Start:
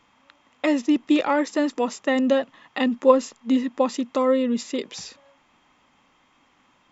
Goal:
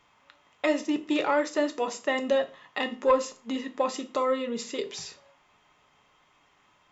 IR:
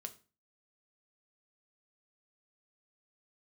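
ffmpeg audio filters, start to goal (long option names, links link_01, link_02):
-filter_complex "[0:a]acontrast=31,equalizer=frequency=240:width=3.3:gain=-11.5[link_01];[1:a]atrim=start_sample=2205[link_02];[link_01][link_02]afir=irnorm=-1:irlink=0,volume=-3dB"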